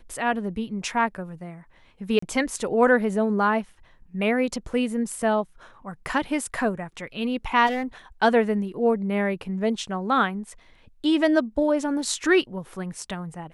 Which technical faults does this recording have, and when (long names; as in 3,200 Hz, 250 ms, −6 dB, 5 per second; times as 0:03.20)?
0:02.19–0:02.22: drop-out 34 ms
0:07.66–0:07.83: clipping −22.5 dBFS